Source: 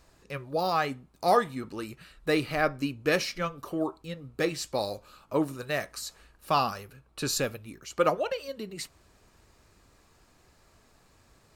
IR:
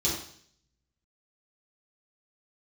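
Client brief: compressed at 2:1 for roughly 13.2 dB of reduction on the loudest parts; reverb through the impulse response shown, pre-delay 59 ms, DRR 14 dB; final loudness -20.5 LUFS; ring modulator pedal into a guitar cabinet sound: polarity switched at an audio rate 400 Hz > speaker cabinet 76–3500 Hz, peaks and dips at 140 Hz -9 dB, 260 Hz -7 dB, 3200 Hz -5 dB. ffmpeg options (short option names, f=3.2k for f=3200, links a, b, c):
-filter_complex "[0:a]acompressor=threshold=-43dB:ratio=2,asplit=2[a][b];[1:a]atrim=start_sample=2205,adelay=59[c];[b][c]afir=irnorm=-1:irlink=0,volume=-22.5dB[d];[a][d]amix=inputs=2:normalize=0,aeval=exprs='val(0)*sgn(sin(2*PI*400*n/s))':c=same,highpass=76,equalizer=f=140:t=q:w=4:g=-9,equalizer=f=260:t=q:w=4:g=-7,equalizer=f=3.2k:t=q:w=4:g=-5,lowpass=f=3.5k:w=0.5412,lowpass=f=3.5k:w=1.3066,volume=21.5dB"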